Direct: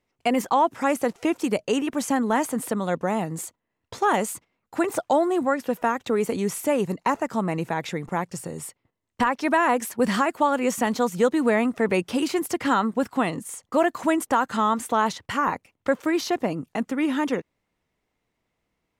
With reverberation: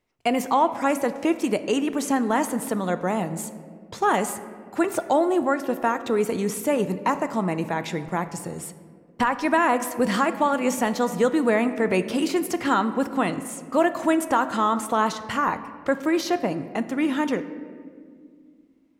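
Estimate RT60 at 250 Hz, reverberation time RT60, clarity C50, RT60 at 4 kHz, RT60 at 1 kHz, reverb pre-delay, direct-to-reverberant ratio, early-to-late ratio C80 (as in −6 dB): 3.2 s, 2.0 s, 12.5 dB, 1.0 s, 1.7 s, 3 ms, 10.5 dB, 13.5 dB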